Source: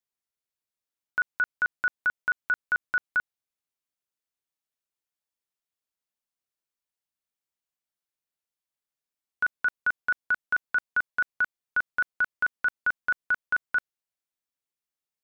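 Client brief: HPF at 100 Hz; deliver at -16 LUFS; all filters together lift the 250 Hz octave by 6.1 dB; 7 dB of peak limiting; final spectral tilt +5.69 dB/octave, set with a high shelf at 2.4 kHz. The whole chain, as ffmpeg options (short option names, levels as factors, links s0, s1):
-af "highpass=100,equalizer=f=250:t=o:g=8,highshelf=f=2400:g=-7,volume=10,alimiter=limit=0.473:level=0:latency=1"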